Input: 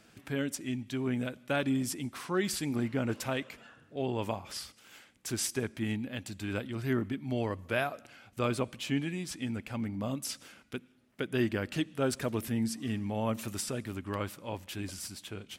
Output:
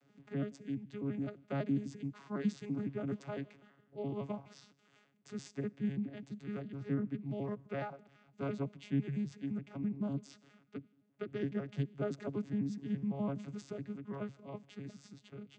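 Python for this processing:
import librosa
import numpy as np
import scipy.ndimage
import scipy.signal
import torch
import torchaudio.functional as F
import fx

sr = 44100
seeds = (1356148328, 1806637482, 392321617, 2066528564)

y = fx.vocoder_arp(x, sr, chord='bare fifth', root=49, every_ms=84)
y = F.gain(torch.from_numpy(y), -4.0).numpy()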